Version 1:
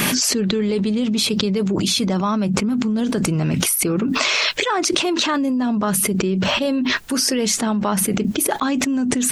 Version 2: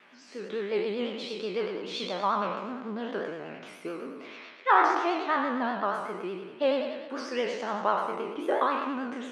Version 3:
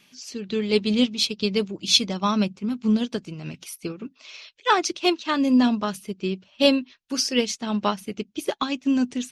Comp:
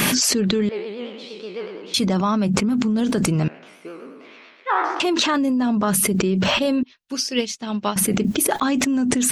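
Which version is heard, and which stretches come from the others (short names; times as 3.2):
1
0.69–1.94 from 2
3.48–5 from 2
6.83–7.96 from 3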